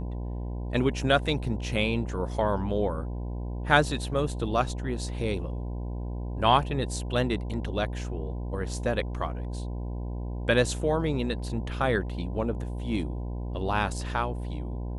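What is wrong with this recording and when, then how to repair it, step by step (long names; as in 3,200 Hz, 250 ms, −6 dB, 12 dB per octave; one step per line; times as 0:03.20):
mains buzz 60 Hz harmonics 17 −33 dBFS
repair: hum removal 60 Hz, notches 17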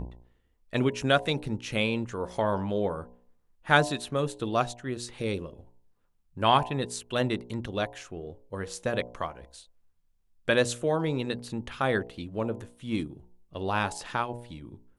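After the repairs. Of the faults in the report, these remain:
none of them is left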